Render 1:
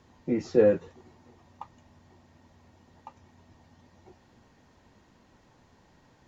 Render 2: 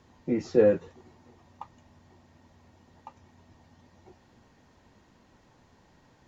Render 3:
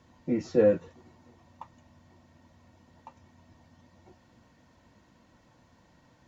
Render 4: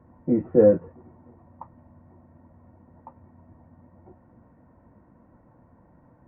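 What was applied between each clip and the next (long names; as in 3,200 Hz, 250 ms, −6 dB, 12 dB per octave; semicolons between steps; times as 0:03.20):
no processing that can be heard
notch comb filter 410 Hz
Gaussian smoothing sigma 6.5 samples; level +6.5 dB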